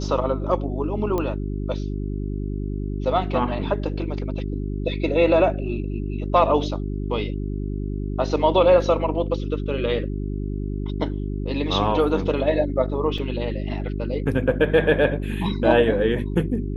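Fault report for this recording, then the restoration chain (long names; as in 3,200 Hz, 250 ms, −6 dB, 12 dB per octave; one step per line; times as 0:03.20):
mains hum 50 Hz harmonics 8 −27 dBFS
0:01.18: click −13 dBFS
0:13.18: drop-out 3.3 ms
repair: click removal
hum removal 50 Hz, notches 8
repair the gap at 0:13.18, 3.3 ms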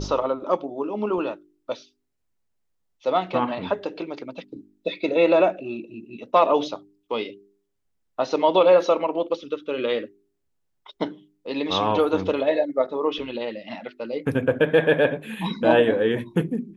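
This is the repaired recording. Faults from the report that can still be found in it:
none of them is left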